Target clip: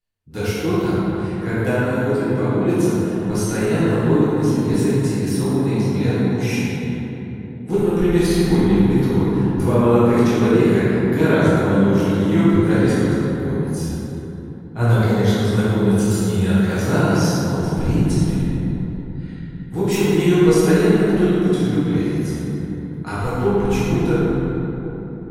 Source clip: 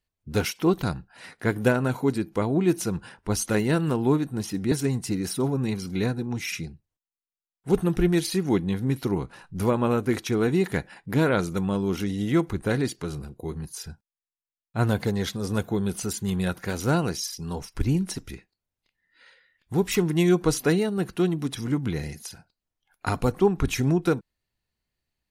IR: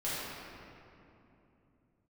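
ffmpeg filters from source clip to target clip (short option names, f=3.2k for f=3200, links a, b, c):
-filter_complex "[0:a]dynaudnorm=f=890:g=11:m=3.5dB[a];[1:a]atrim=start_sample=2205,asetrate=33075,aresample=44100[b];[a][b]afir=irnorm=-1:irlink=0,volume=-4.5dB"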